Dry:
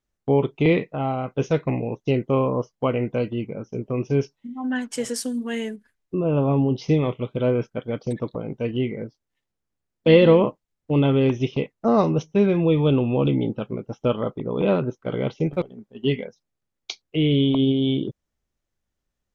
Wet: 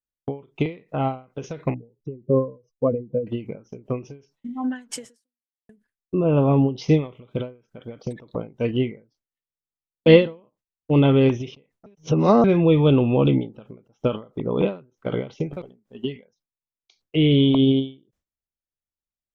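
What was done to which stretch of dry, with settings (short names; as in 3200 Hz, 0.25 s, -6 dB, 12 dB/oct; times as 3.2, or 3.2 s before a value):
1.74–3.27 spectral contrast raised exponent 2.4
4.98–5.69 fade out exponential
11.86–12.44 reverse
whole clip: gate with hold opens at -46 dBFS; ending taper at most 180 dB/s; gain +2.5 dB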